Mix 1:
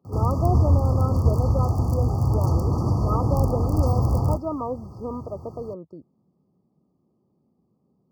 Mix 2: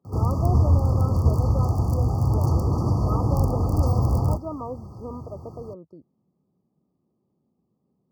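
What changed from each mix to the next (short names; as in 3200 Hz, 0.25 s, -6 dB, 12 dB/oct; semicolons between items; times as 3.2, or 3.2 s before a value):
speech -4.5 dB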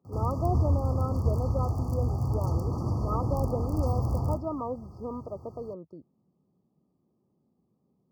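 background -8.5 dB; reverb: on, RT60 2.6 s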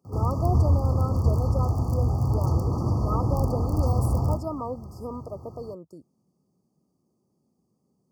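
speech: remove air absorption 330 m; background +4.5 dB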